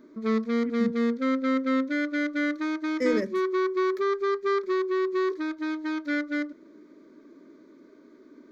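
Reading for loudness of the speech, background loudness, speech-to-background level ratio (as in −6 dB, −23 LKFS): −31.0 LKFS, −27.5 LKFS, −3.5 dB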